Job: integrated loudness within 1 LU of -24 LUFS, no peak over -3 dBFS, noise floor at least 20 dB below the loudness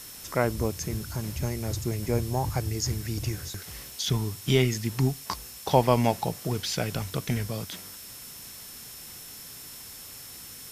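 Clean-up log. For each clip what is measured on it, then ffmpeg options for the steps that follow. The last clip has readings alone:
steady tone 5400 Hz; tone level -50 dBFS; noise floor -44 dBFS; noise floor target -49 dBFS; loudness -28.5 LUFS; peak -6.0 dBFS; loudness target -24.0 LUFS
-> -af "bandreject=f=5.4k:w=30"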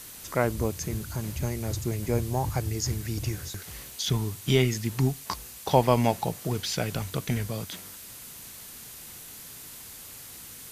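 steady tone none; noise floor -44 dBFS; noise floor target -49 dBFS
-> -af "afftdn=nr=6:nf=-44"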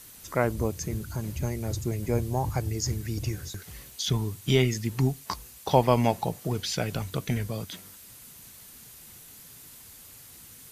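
noise floor -49 dBFS; loudness -28.5 LUFS; peak -6.0 dBFS; loudness target -24.0 LUFS
-> -af "volume=4.5dB,alimiter=limit=-3dB:level=0:latency=1"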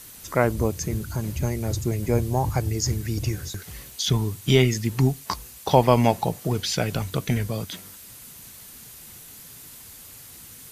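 loudness -24.5 LUFS; peak -3.0 dBFS; noise floor -45 dBFS

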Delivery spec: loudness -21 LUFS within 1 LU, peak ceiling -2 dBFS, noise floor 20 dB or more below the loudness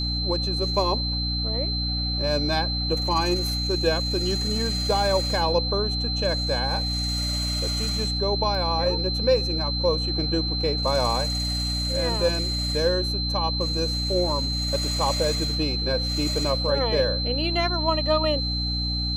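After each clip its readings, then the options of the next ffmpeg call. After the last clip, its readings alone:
hum 60 Hz; harmonics up to 300 Hz; hum level -26 dBFS; steady tone 4100 Hz; tone level -27 dBFS; loudness -23.5 LUFS; peak -9.0 dBFS; loudness target -21.0 LUFS
-> -af "bandreject=f=60:t=h:w=4,bandreject=f=120:t=h:w=4,bandreject=f=180:t=h:w=4,bandreject=f=240:t=h:w=4,bandreject=f=300:t=h:w=4"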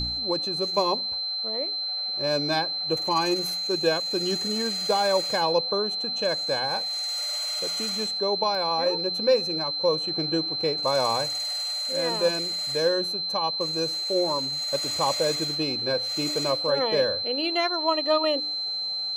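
hum none; steady tone 4100 Hz; tone level -27 dBFS
-> -af "bandreject=f=4.1k:w=30"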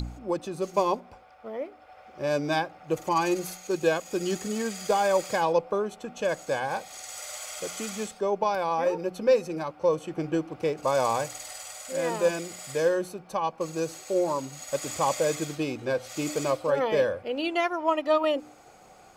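steady tone none; loudness -28.0 LUFS; peak -11.5 dBFS; loudness target -21.0 LUFS
-> -af "volume=7dB"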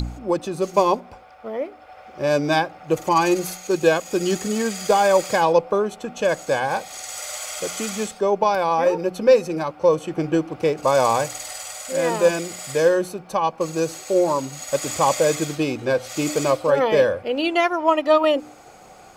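loudness -21.0 LUFS; peak -4.5 dBFS; noise floor -46 dBFS

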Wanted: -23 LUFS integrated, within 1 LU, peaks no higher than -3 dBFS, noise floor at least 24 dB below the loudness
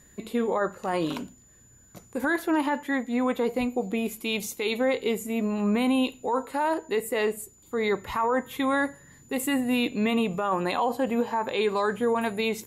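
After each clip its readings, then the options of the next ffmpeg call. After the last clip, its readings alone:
steady tone 7000 Hz; tone level -56 dBFS; loudness -27.0 LUFS; peak -14.0 dBFS; loudness target -23.0 LUFS
-> -af "bandreject=f=7k:w=30"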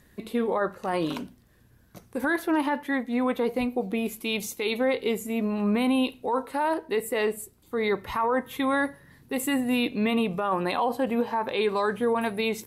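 steady tone none; loudness -27.0 LUFS; peak -14.0 dBFS; loudness target -23.0 LUFS
-> -af "volume=4dB"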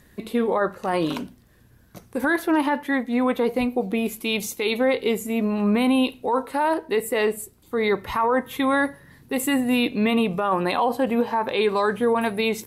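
loudness -23.0 LUFS; peak -10.0 dBFS; noise floor -55 dBFS

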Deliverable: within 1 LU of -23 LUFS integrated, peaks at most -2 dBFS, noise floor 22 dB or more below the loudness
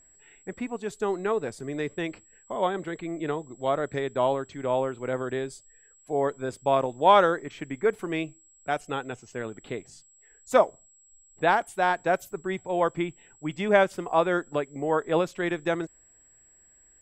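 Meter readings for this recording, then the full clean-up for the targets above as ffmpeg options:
steady tone 7700 Hz; tone level -56 dBFS; loudness -27.5 LUFS; peak -5.5 dBFS; loudness target -23.0 LUFS
-> -af "bandreject=f=7.7k:w=30"
-af "volume=4.5dB,alimiter=limit=-2dB:level=0:latency=1"

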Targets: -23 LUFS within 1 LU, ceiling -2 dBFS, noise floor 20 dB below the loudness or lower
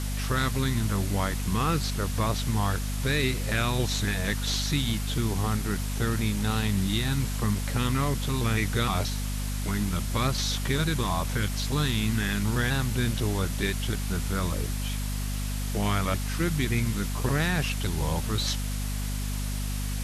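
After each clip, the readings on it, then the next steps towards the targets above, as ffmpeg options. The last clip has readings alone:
hum 50 Hz; harmonics up to 250 Hz; hum level -28 dBFS; noise floor -30 dBFS; noise floor target -48 dBFS; loudness -28.0 LUFS; peak -12.5 dBFS; loudness target -23.0 LUFS
-> -af "bandreject=f=50:t=h:w=4,bandreject=f=100:t=h:w=4,bandreject=f=150:t=h:w=4,bandreject=f=200:t=h:w=4,bandreject=f=250:t=h:w=4"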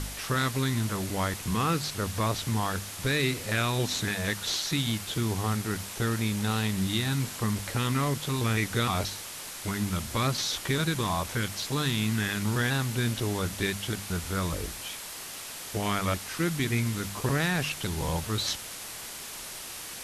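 hum none; noise floor -40 dBFS; noise floor target -50 dBFS
-> -af "afftdn=nr=10:nf=-40"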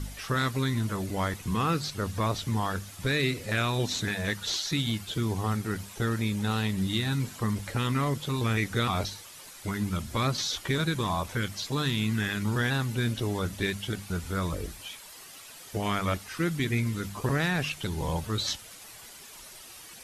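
noise floor -47 dBFS; noise floor target -50 dBFS
-> -af "afftdn=nr=6:nf=-47"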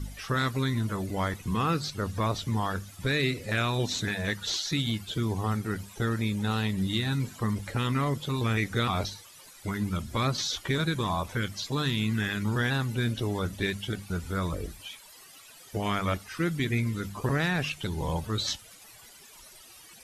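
noise floor -51 dBFS; loudness -29.5 LUFS; peak -14.5 dBFS; loudness target -23.0 LUFS
-> -af "volume=6.5dB"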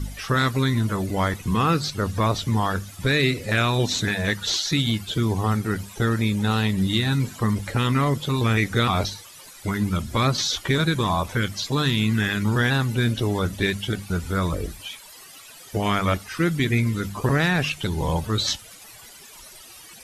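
loudness -23.0 LUFS; peak -8.0 dBFS; noise floor -45 dBFS

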